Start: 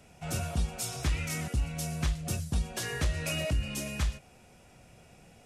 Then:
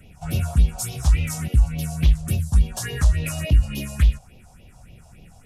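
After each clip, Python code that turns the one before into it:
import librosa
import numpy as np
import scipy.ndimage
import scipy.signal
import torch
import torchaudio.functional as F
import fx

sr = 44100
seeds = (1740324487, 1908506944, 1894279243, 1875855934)

y = fx.phaser_stages(x, sr, stages=4, low_hz=330.0, high_hz=1500.0, hz=3.5, feedback_pct=35)
y = fx.low_shelf(y, sr, hz=83.0, db=9.0)
y = F.gain(torch.from_numpy(y), 6.5).numpy()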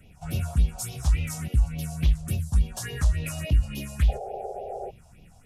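y = fx.spec_paint(x, sr, seeds[0], shape='noise', start_s=4.08, length_s=0.83, low_hz=370.0, high_hz=830.0, level_db=-30.0)
y = F.gain(torch.from_numpy(y), -5.0).numpy()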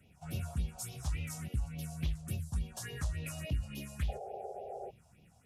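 y = scipy.signal.sosfilt(scipy.signal.butter(2, 74.0, 'highpass', fs=sr, output='sos'), x)
y = F.gain(torch.from_numpy(y), -8.5).numpy()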